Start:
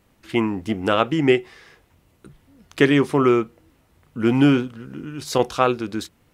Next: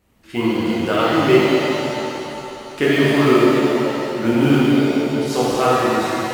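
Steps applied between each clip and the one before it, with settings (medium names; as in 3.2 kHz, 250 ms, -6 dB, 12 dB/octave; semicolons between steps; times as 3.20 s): in parallel at -7 dB: short-mantissa float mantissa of 2-bit; on the sum: pitch-shifted reverb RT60 3.2 s, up +7 st, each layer -8 dB, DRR -8.5 dB; trim -8.5 dB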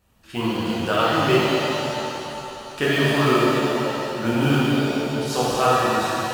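peaking EQ 320 Hz -7.5 dB 1.2 oct; band-stop 2.1 kHz, Q 6.5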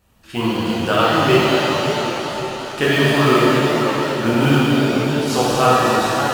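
modulated delay 545 ms, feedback 49%, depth 205 cents, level -9.5 dB; trim +4 dB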